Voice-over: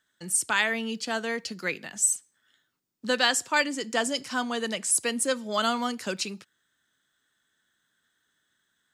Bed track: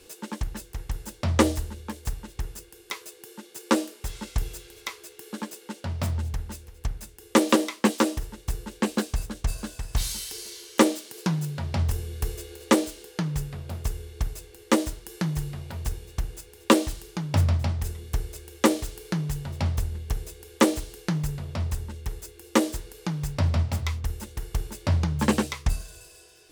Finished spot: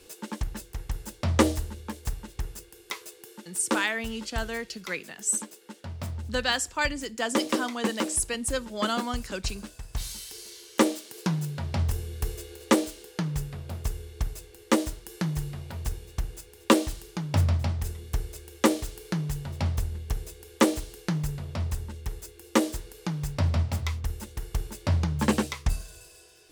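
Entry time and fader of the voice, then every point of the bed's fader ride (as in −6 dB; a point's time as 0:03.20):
3.25 s, −3.0 dB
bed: 0:03.14 −1 dB
0:03.96 −7 dB
0:09.90 −7 dB
0:11.16 −1.5 dB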